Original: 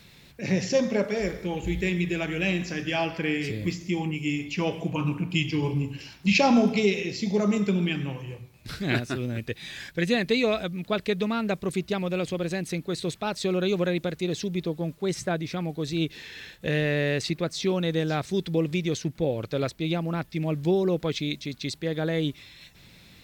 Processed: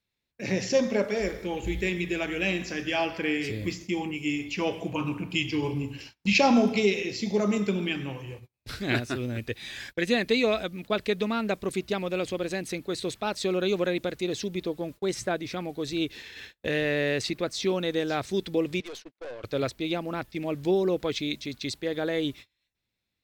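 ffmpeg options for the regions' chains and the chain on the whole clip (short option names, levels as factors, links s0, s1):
-filter_complex "[0:a]asettb=1/sr,asplit=3[s0][s1][s2];[s0]atrim=end=18.804[s3];[s1]atrim=start=18.8:end=19.44,asetpts=PTS-STARTPTS,afade=t=in:d=0.004:c=qsin,afade=t=out:st=0.636:d=0.004:c=qsin,highpass=490,lowpass=4400,aeval=exprs='(tanh(63.1*val(0)+0.4)-tanh(0.4))/63.1':c=same[s4];[s2]atrim=start=19.436[s5];[s3][s4]acrossfade=d=0.004:c1=hsin:c2=qsin[s6];[s6][s5]acrossfade=d=0.004:c1=qsin:c2=hsin,equalizer=f=160:t=o:w=0.34:g=-12,agate=range=0.0282:threshold=0.00794:ratio=16:detection=peak"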